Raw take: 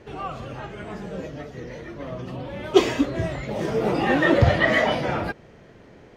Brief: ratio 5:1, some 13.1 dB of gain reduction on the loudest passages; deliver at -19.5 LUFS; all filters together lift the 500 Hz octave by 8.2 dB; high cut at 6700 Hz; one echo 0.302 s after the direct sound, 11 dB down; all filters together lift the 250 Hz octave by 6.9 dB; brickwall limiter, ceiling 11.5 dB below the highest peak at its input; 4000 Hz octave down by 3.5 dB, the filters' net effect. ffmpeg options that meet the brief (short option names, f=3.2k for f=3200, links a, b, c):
-af "lowpass=6.7k,equalizer=f=250:t=o:g=5.5,equalizer=f=500:t=o:g=9,equalizer=f=4k:t=o:g=-5,acompressor=threshold=-18dB:ratio=5,alimiter=limit=-20dB:level=0:latency=1,aecho=1:1:302:0.282,volume=9dB"